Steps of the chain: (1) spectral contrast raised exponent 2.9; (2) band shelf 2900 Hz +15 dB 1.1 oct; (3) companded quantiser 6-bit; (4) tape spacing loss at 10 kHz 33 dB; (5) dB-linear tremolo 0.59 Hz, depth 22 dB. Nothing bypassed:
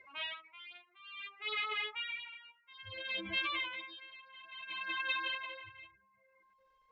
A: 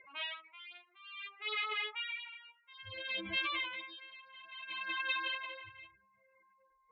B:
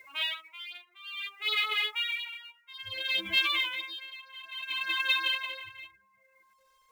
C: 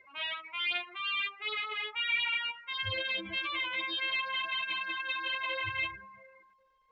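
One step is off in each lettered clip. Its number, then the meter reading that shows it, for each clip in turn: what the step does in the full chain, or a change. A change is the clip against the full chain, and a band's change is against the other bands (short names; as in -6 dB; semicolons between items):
3, distortion -25 dB; 4, 4 kHz band +8.0 dB; 5, momentary loudness spread change -13 LU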